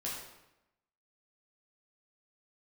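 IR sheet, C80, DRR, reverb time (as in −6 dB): 4.5 dB, −6.0 dB, 0.90 s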